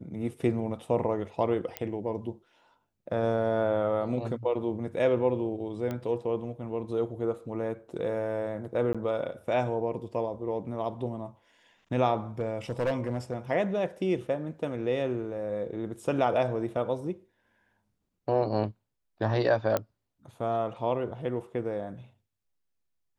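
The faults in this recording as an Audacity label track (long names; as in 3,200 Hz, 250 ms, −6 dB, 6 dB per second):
1.770000	1.770000	click −15 dBFS
5.910000	5.910000	click −21 dBFS
8.930000	8.950000	drop-out 16 ms
12.390000	13.340000	clipping −23 dBFS
19.770000	19.770000	click −13 dBFS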